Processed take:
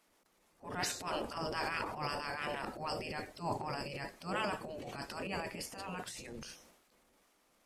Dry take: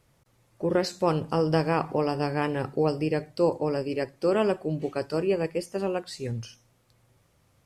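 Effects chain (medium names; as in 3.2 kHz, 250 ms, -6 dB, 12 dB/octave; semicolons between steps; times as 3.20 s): spectral gate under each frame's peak -10 dB weak; transient shaper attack -11 dB, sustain +9 dB; trim -2 dB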